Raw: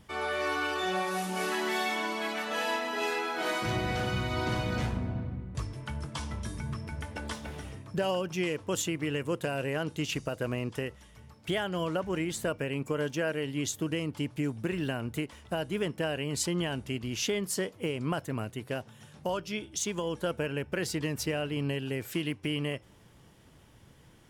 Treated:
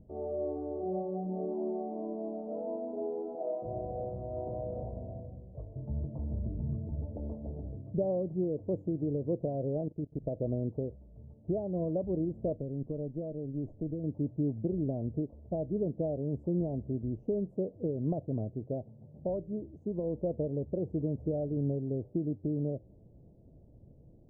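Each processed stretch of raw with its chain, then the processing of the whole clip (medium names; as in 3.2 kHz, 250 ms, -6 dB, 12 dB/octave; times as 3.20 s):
3.35–5.76 s: low-pass 1.7 kHz + resonant low shelf 400 Hz -10.5 dB, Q 1.5
9.81–10.25 s: steep low-pass 1.6 kHz + level held to a coarse grid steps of 17 dB
12.54–14.04 s: dynamic bell 610 Hz, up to -6 dB, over -42 dBFS, Q 0.88 + valve stage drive 26 dB, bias 0.45
whole clip: elliptic low-pass 650 Hz, stop band 60 dB; bass shelf 82 Hz +6.5 dB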